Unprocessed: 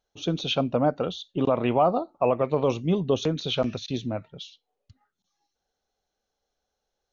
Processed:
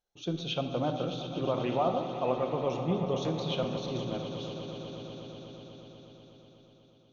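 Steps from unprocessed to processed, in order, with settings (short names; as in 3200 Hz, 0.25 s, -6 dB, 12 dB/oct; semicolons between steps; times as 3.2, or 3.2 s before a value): swelling echo 0.122 s, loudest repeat 5, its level -14 dB; shoebox room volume 1100 m³, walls mixed, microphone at 0.87 m; gain -8.5 dB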